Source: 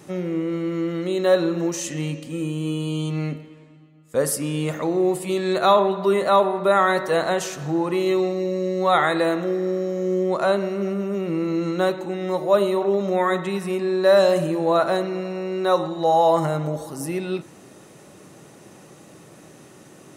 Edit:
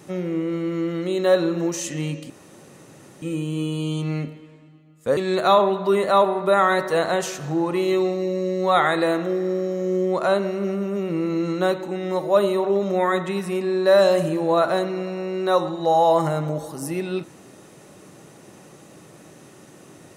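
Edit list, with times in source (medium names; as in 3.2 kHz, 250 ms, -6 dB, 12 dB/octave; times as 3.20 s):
2.30 s: insert room tone 0.92 s
4.25–5.35 s: delete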